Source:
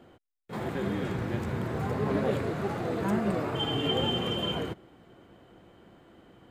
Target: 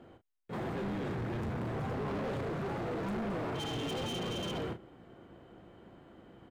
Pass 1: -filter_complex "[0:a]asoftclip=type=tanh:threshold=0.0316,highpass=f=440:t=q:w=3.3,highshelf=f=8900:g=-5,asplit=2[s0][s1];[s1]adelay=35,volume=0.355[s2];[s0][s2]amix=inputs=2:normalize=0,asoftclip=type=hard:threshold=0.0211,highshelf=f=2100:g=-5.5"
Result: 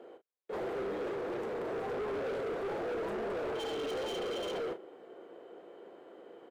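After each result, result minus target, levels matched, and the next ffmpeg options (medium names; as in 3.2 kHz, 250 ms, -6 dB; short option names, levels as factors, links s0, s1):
saturation: distortion +12 dB; 500 Hz band +4.0 dB
-filter_complex "[0:a]asoftclip=type=tanh:threshold=0.106,highpass=f=440:t=q:w=3.3,highshelf=f=8900:g=-5,asplit=2[s0][s1];[s1]adelay=35,volume=0.355[s2];[s0][s2]amix=inputs=2:normalize=0,asoftclip=type=hard:threshold=0.0211,highshelf=f=2100:g=-5.5"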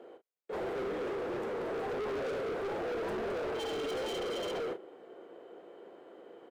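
500 Hz band +4.0 dB
-filter_complex "[0:a]asoftclip=type=tanh:threshold=0.106,highshelf=f=8900:g=-5,asplit=2[s0][s1];[s1]adelay=35,volume=0.355[s2];[s0][s2]amix=inputs=2:normalize=0,asoftclip=type=hard:threshold=0.0211,highshelf=f=2100:g=-5.5"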